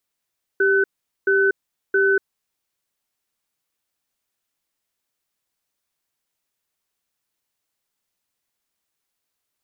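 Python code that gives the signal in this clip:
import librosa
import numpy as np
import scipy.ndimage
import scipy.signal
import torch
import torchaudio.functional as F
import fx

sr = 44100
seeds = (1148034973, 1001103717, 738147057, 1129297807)

y = fx.cadence(sr, length_s=1.67, low_hz=392.0, high_hz=1510.0, on_s=0.24, off_s=0.43, level_db=-17.0)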